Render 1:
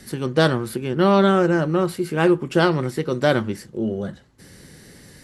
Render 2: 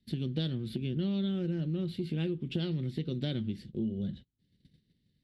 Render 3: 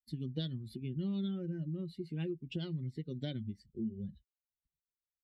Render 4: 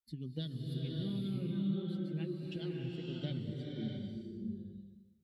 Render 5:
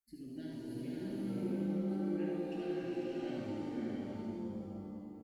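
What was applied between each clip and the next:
gate -41 dBFS, range -26 dB; FFT filter 220 Hz 0 dB, 1.1 kHz -28 dB, 3.6 kHz +1 dB, 6.4 kHz -22 dB; compression, threshold -30 dBFS, peak gain reduction 12.5 dB
expander on every frequency bin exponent 2; trim -2 dB
swelling reverb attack 610 ms, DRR -2 dB; trim -3.5 dB
static phaser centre 720 Hz, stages 8; delay 75 ms -4 dB; pitch-shifted reverb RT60 2.1 s, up +7 st, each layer -8 dB, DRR -2 dB; trim -1 dB

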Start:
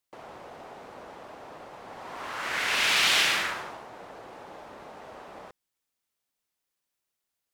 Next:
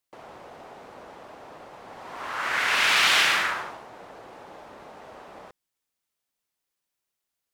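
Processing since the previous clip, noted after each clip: dynamic bell 1.3 kHz, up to +6 dB, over -40 dBFS, Q 0.81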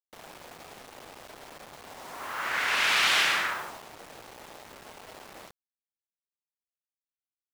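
bit crusher 7-bit; trim -3.5 dB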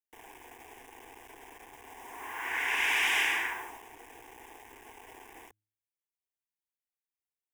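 static phaser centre 870 Hz, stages 8; de-hum 105.3 Hz, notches 3; trim -1 dB

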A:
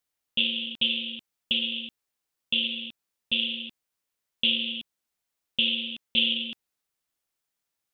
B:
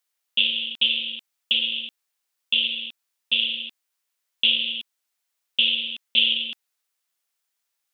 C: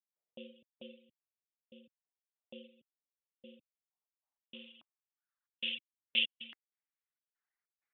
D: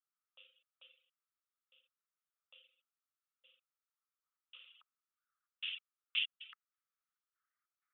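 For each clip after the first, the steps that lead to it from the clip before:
high-pass 1 kHz 6 dB/octave; trim +5 dB
low-pass sweep 570 Hz -> 2 kHz, 3.64–5.91 s; trance gate ".xxx.xx.x..x.x" 96 bpm -60 dB; reverb removal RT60 1.4 s; trim -8 dB
ladder high-pass 1.2 kHz, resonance 80%; trim +6.5 dB

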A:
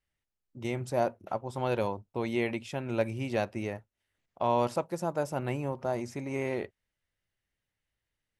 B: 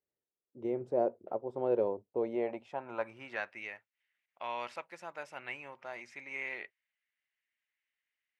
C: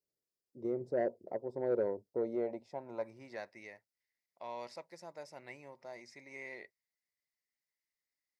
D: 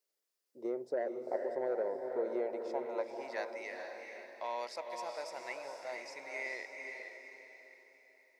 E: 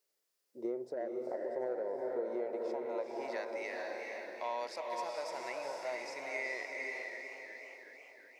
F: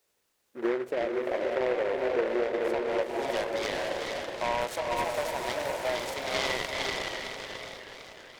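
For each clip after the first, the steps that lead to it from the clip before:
band-pass sweep 430 Hz -> 2.2 kHz, 2.12–3.64 s; trim +4 dB
high-order bell 1.9 kHz -14.5 dB; saturation -20.5 dBFS, distortion -21 dB; graphic EQ with 31 bands 160 Hz +3 dB, 800 Hz -6 dB, 2 kHz +10 dB, 3.15 kHz -5 dB, 5 kHz +7 dB; trim -1 dB
high-pass 500 Hz 12 dB/octave; compression, threshold -38 dBFS, peak gain reduction 8.5 dB; echo that smears into a reverb 457 ms, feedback 43%, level -4 dB; trim +6.5 dB
compression 5:1, threshold -39 dBFS, peak gain reduction 9.5 dB; harmonic-percussive split harmonic +6 dB; modulated delay 370 ms, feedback 60%, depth 109 cents, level -12 dB
delay time shaken by noise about 1.2 kHz, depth 0.088 ms; trim +9 dB

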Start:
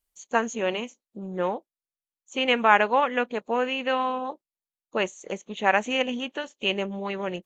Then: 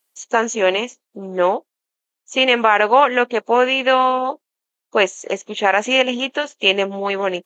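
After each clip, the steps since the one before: high-pass 300 Hz 12 dB/octave; loudness maximiser +12 dB; trim -1 dB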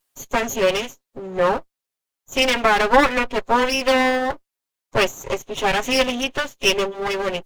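comb filter that takes the minimum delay 7.4 ms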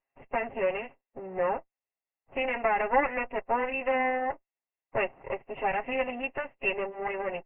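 in parallel at +0.5 dB: compression, threshold -27 dBFS, peak gain reduction 17.5 dB; on the sum: rippled Chebyshev low-pass 2.8 kHz, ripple 9 dB; trim -8 dB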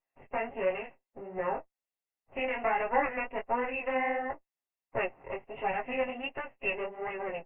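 chorus 1.4 Hz, delay 16 ms, depth 7.4 ms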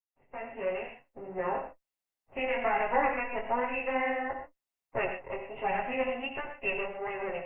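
fade-in on the opening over 0.98 s; on a send at -5 dB: reverberation, pre-delay 46 ms

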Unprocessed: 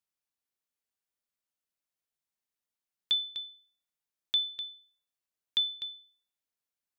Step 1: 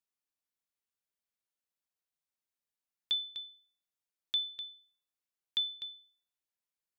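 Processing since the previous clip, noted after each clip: de-hum 119.4 Hz, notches 6; trim -4 dB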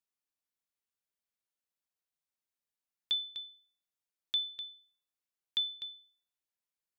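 no audible change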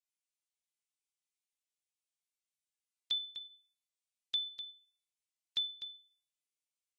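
trim -2.5 dB; Vorbis 32 kbps 32 kHz

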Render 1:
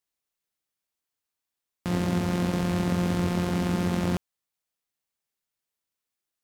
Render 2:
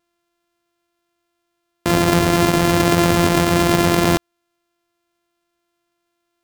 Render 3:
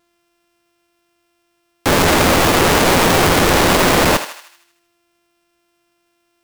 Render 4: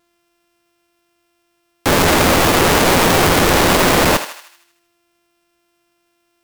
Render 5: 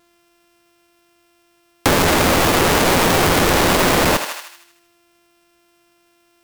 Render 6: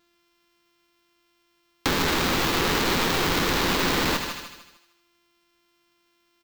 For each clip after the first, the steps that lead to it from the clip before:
sorted samples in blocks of 128 samples; in parallel at +2 dB: peak limiter -23 dBFS, peak gain reduction 9 dB; on the sum: trim +6 dB
integer overflow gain 16.5 dB; on a send: thinning echo 78 ms, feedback 54%, high-pass 690 Hz, level -9.5 dB; on the sum: trim +8.5 dB
peaking EQ 16 kHz +2 dB 0.77 oct
compression 6:1, threshold -19 dBFS, peak gain reduction 8.5 dB; trim +6 dB
fifteen-band graphic EQ 100 Hz -6 dB, 630 Hz -8 dB, 4 kHz +4 dB, 10 kHz -8 dB; on a send: feedback delay 150 ms, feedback 37%, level -10 dB; on the sum: trim -7.5 dB

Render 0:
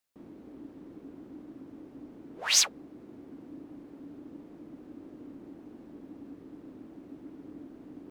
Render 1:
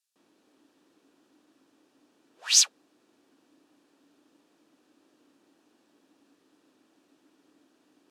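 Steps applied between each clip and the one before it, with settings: Bessel low-pass 6.4 kHz, order 2; differentiator; band-stop 2.1 kHz, Q 8; trim +8 dB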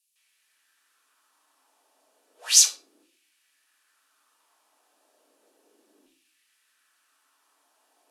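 peaking EQ 11 kHz +14 dB 1.1 oct; LFO high-pass saw down 0.33 Hz 330–2700 Hz; simulated room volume 280 m³, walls furnished, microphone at 1.5 m; trim -3.5 dB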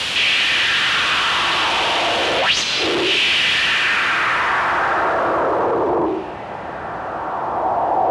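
one-bit delta coder 64 kbps, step -12 dBFS; low-pass sweep 3 kHz -> 710 Hz, 3.57–6.32 s; frequency shift +50 Hz

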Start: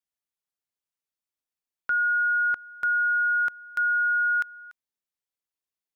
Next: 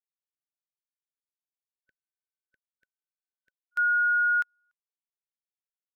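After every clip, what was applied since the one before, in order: spectral selection erased 0.95–3.72 s, 570–1500 Hz; upward expansion 2.5:1, over -42 dBFS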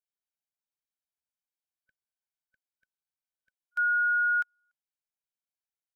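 comb 1.3 ms, depth 67%; trim -5.5 dB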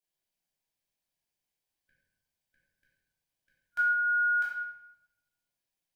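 peaking EQ 1.3 kHz -14 dB 0.27 oct; reverberation RT60 0.95 s, pre-delay 3 ms, DRR -7.5 dB

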